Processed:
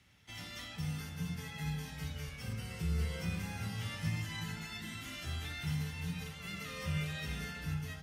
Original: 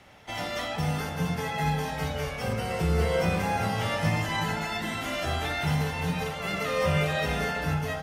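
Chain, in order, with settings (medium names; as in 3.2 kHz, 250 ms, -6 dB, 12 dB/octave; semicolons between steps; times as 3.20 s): high-pass 55 Hz; amplifier tone stack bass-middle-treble 6-0-2; trim +6.5 dB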